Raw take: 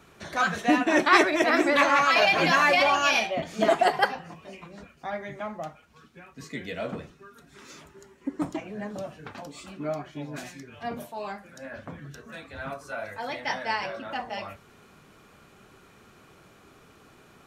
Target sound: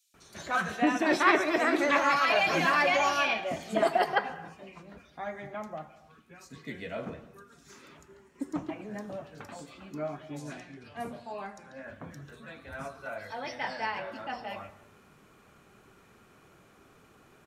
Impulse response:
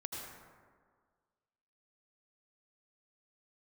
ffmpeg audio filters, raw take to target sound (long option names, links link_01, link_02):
-filter_complex "[0:a]asettb=1/sr,asplit=3[link_01][link_02][link_03];[link_01]atrim=end=10.384[link_04];[link_02]atrim=start=10.38:end=11.84,asetpts=PTS-STARTPTS,afade=type=in:duration=0.004:curve=qsin,afade=type=out:start_time=1.456:duration=0.004:curve=qsin,lowpass=frequency=11000:width=0.5412,lowpass=frequency=11000:width=1.3066[link_05];[link_03]atrim=start=11.836[link_06];[link_04][link_05]acrossfade=duration=0.004:curve1=hsin:curve2=qsin[link_07];[link_07][link_06]acrossfade=duration=0.004:curve1=qsin:curve2=hsin,acrossover=split=4100[link_08][link_09];[link_08]adelay=140[link_10];[link_10][link_09]amix=inputs=2:normalize=0,asplit=2[link_11][link_12];[1:a]atrim=start_sample=2205,afade=type=out:start_time=0.39:duration=0.01,atrim=end_sample=17640[link_13];[link_12][link_13]afir=irnorm=-1:irlink=0,volume=-11dB[link_14];[link_11][link_14]amix=inputs=2:normalize=0,volume=-5.5dB"